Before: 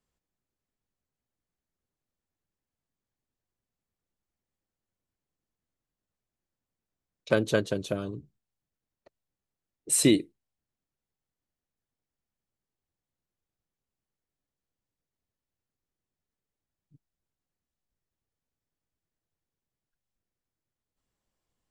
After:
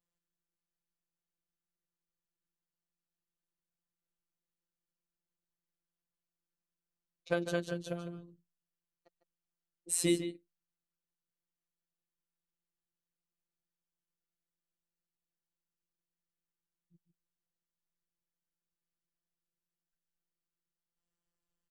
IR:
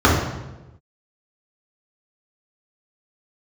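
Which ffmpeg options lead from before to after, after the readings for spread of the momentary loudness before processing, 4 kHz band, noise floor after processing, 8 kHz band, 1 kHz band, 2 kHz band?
14 LU, -8.5 dB, under -85 dBFS, -8.0 dB, -6.0 dB, -7.5 dB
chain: -filter_complex "[0:a]afftfilt=real='hypot(re,im)*cos(PI*b)':imag='0':win_size=1024:overlap=0.75,asplit=2[a][b];[b]adelay=151.6,volume=-10dB,highshelf=f=4k:g=-3.41[c];[a][c]amix=inputs=2:normalize=0,volume=-5dB"

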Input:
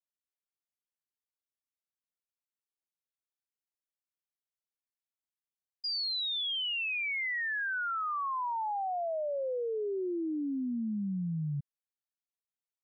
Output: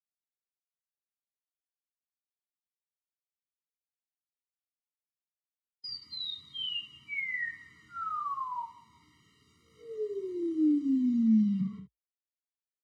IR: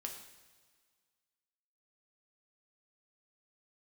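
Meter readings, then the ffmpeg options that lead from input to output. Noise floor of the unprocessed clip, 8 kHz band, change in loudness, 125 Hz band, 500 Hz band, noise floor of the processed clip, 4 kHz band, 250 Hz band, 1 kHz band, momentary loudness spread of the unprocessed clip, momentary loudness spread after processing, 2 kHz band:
under -85 dBFS, n/a, +1.0 dB, -2.5 dB, -5.5 dB, under -85 dBFS, -5.0 dB, +7.5 dB, -4.5 dB, 4 LU, 17 LU, -5.5 dB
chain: -filter_complex "[0:a]equalizer=f=470:w=0.79:g=6.5,aecho=1:1:184|368|552:0.112|0.0393|0.0137,acrossover=split=160|860|1300[a][b][c][d];[c]acompressor=threshold=-49dB:ratio=6[e];[a][b][e][d]amix=inputs=4:normalize=0,alimiter=level_in=8.5dB:limit=-24dB:level=0:latency=1:release=66,volume=-8.5dB,acrusher=bits=8:mix=0:aa=0.000001,afreqshift=52,asubboost=boost=9:cutoff=170,highpass=110,lowpass=3.9k[f];[1:a]atrim=start_sample=2205,atrim=end_sample=4410,asetrate=52920,aresample=44100[g];[f][g]afir=irnorm=-1:irlink=0,afftfilt=real='re*eq(mod(floor(b*sr/1024/460),2),0)':imag='im*eq(mod(floor(b*sr/1024/460),2),0)':win_size=1024:overlap=0.75,volume=7dB"

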